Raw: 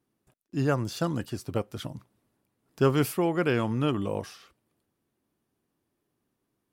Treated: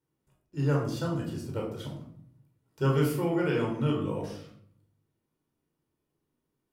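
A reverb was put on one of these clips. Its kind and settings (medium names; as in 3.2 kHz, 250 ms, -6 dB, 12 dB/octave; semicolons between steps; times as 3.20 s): simulated room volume 1000 m³, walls furnished, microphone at 4.6 m; trim -9.5 dB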